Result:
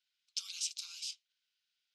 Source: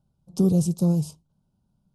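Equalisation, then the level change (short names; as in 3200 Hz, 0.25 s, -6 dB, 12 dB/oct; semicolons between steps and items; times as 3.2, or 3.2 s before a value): steep high-pass 1800 Hz 48 dB/oct; air absorption 180 m; +15.0 dB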